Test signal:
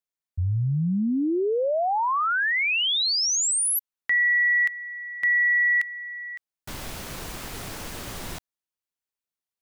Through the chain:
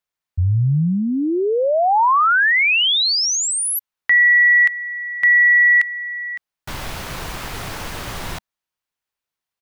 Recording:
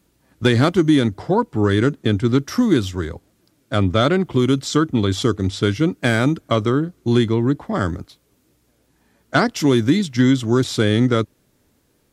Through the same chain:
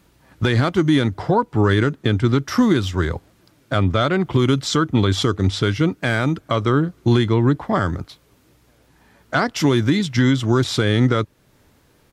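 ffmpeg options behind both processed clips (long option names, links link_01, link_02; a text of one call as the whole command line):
ffmpeg -i in.wav -af "firequalizer=gain_entry='entry(150,0);entry(220,-4);entry(910,2);entry(7600,-5)':delay=0.05:min_phase=1,alimiter=limit=-14dB:level=0:latency=1:release=393,volume=7.5dB" out.wav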